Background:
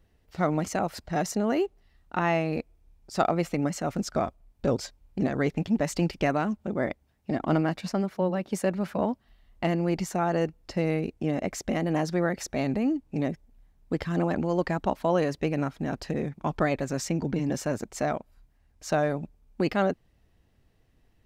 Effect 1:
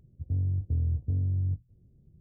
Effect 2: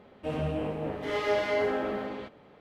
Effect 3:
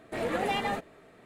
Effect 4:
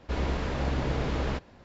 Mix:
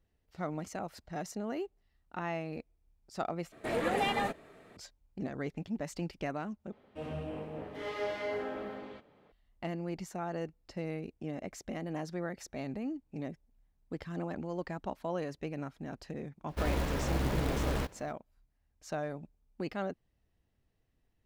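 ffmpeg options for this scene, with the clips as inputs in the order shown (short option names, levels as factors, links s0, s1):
-filter_complex "[0:a]volume=0.266[s0];[4:a]acrusher=bits=4:mode=log:mix=0:aa=0.000001[s1];[s0]asplit=3[s2][s3][s4];[s2]atrim=end=3.524[s5];[3:a]atrim=end=1.25,asetpts=PTS-STARTPTS,volume=0.891[s6];[s3]atrim=start=4.766:end=6.724[s7];[2:a]atrim=end=2.6,asetpts=PTS-STARTPTS,volume=0.376[s8];[s4]atrim=start=9.316[s9];[s1]atrim=end=1.64,asetpts=PTS-STARTPTS,volume=0.708,afade=t=in:d=0.004:c=hsin,afade=t=out:st=1.636:d=0.004:c=hsin,adelay=16480[s10];[s5][s6]acrossfade=d=0.004:c1=hsin:c2=hsin[s11];[s11][s7]acrossfade=d=0.004:c1=hsin:c2=hsin[s12];[s12][s8]acrossfade=d=0.004:c1=hsin:c2=hsin[s13];[s13][s9]acrossfade=d=0.004:c1=hsin:c2=hsin[s14];[s14][s10]amix=inputs=2:normalize=0"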